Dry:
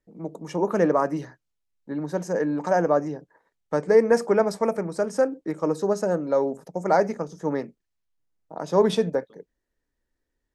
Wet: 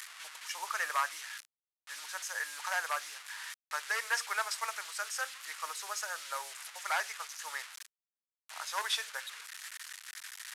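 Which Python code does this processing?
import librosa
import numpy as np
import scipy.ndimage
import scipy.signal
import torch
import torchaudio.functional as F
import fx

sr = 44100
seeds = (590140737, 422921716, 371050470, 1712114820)

y = fx.delta_mod(x, sr, bps=64000, step_db=-36.5)
y = scipy.signal.sosfilt(scipy.signal.butter(4, 1300.0, 'highpass', fs=sr, output='sos'), y)
y = F.gain(torch.from_numpy(y), 2.5).numpy()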